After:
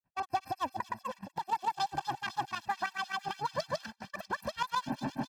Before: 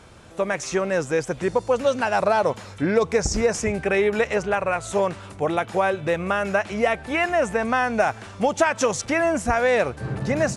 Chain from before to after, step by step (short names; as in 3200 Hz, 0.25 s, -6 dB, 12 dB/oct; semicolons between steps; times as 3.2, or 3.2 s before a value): Wiener smoothing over 25 samples; compressor 2.5:1, threshold -25 dBFS, peak gain reduction 8 dB; limiter -23.5 dBFS, peak gain reduction 10.5 dB; pump 134 bpm, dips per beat 2, -15 dB, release 63 ms; grains 0.225 s, grains 3.4/s, spray 0.457 s, pitch spread up and down by 0 st; speed mistake 7.5 ips tape played at 15 ips; comb 1.2 ms, depth 80%; on a send: thin delay 0.248 s, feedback 85%, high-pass 3700 Hz, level -8.5 dB; on the sum: gate -44 dBFS, range -30 dB